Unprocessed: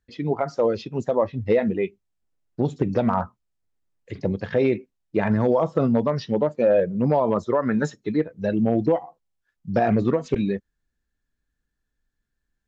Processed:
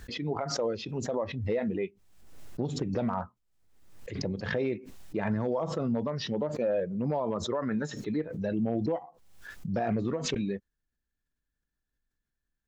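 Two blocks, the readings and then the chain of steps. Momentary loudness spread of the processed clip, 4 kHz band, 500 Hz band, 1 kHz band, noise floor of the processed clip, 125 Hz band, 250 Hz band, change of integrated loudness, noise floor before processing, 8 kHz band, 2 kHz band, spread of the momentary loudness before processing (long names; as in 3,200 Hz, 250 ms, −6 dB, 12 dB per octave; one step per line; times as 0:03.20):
9 LU, +4.0 dB, −9.5 dB, −9.5 dB, −85 dBFS, −7.5 dB, −8.0 dB, −8.5 dB, −80 dBFS, can't be measured, −6.0 dB, 8 LU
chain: brickwall limiter −13.5 dBFS, peak gain reduction 4.5 dB
background raised ahead of every attack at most 55 dB per second
level −8 dB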